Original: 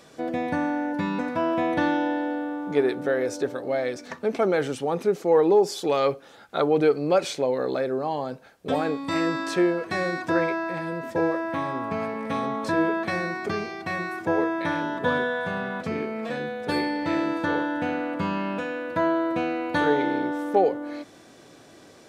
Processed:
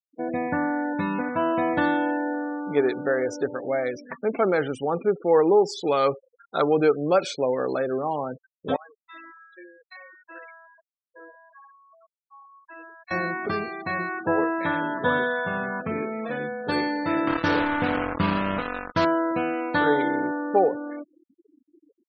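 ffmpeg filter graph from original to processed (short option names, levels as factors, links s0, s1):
-filter_complex "[0:a]asettb=1/sr,asplit=3[s0][s1][s2];[s0]atrim=end=8.764[s3];[s1]atrim=start=8.76:end=13.11,asetpts=PTS-STARTPTS,afade=t=in:d=0.004:c=qsin,afade=t=out:st=4.346:d=0.004:c=qsin,adynamicsmooth=sensitivity=3.5:basefreq=1100,aderivative[s4];[s2]atrim=start=13.106[s5];[s3][s4]acrossfade=d=0.004:c1=hsin:c2=qsin[s6];[s6][s5]acrossfade=d=0.004:c1=qsin:c2=hsin,asettb=1/sr,asplit=3[s7][s8][s9];[s7]atrim=end=17.274[s10];[s8]atrim=start=17.27:end=19.05,asetpts=PTS-STARTPTS,afade=t=in:d=0.004:c=qsin,afade=t=out:st=1.776:d=0.004:c=qsin,lowshelf=f=140:g=11.5,acrusher=bits=3:mix=0:aa=0.5[s11];[s9]atrim=start=19.046[s12];[s10][s11]acrossfade=d=0.004:c1=hsin:c2=qsin[s13];[s13][s12]acrossfade=d=0.004:c1=qsin:c2=hsin,adynamicequalizer=threshold=0.01:dfrequency=1300:dqfactor=1.9:tfrequency=1300:tqfactor=1.9:attack=5:release=100:ratio=0.375:range=2:mode=boostabove:tftype=bell,afftfilt=real='re*gte(hypot(re,im),0.0224)':imag='im*gte(hypot(re,im),0.0224)':win_size=1024:overlap=0.75"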